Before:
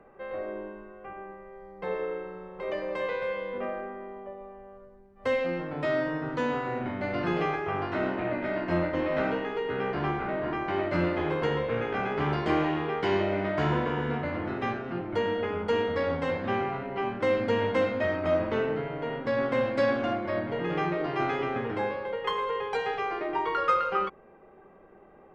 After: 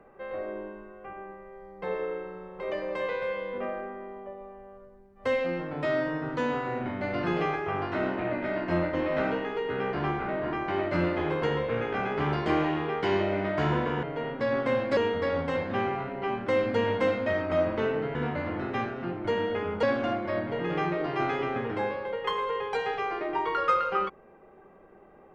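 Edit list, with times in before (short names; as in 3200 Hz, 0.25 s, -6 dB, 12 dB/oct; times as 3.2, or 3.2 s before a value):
14.03–15.71 swap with 18.89–19.83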